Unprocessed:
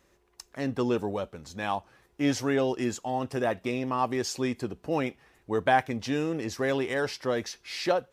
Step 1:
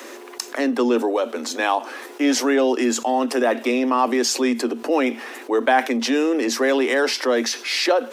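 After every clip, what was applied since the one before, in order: Chebyshev high-pass 230 Hz, order 10; fast leveller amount 50%; gain +5.5 dB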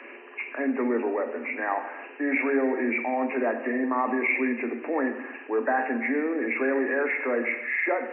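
nonlinear frequency compression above 1600 Hz 4:1; non-linear reverb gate 0.34 s falling, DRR 5.5 dB; gain -8 dB

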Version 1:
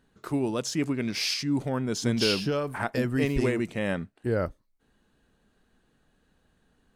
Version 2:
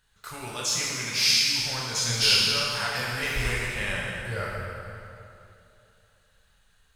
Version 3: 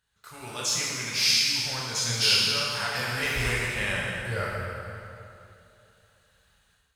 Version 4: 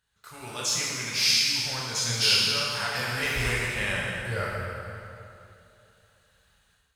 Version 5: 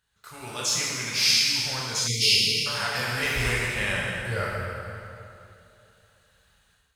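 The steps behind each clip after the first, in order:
passive tone stack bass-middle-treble 10-0-10; plate-style reverb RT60 2.8 s, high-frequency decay 0.75×, DRR -5.5 dB; gain +5 dB
HPF 49 Hz; AGC gain up to 9.5 dB; gain -8 dB
nothing audible
spectral delete 2.07–2.66, 500–1900 Hz; gain +1.5 dB

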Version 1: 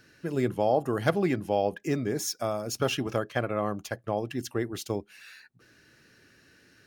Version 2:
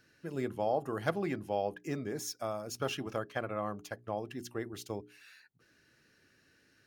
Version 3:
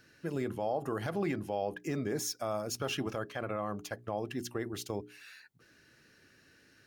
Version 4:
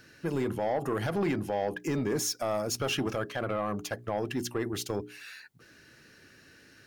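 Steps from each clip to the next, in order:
notches 60/120/180/240/300/360/420 Hz; dynamic EQ 1100 Hz, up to +3 dB, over -38 dBFS, Q 0.99; gain -8 dB
limiter -28.5 dBFS, peak gain reduction 11.5 dB; gain +4.5 dB
soft clip -28.5 dBFS, distortion -15 dB; gain +6.5 dB

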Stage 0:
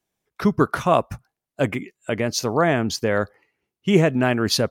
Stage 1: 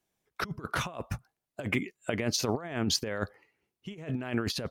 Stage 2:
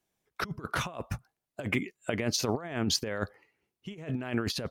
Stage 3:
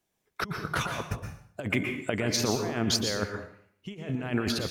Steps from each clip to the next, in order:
dynamic EQ 3000 Hz, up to +4 dB, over -37 dBFS, Q 0.97; negative-ratio compressor -24 dBFS, ratio -0.5; gain -7 dB
nothing audible
plate-style reverb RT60 0.58 s, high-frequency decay 0.9×, pre-delay 0.105 s, DRR 4 dB; gain +1.5 dB

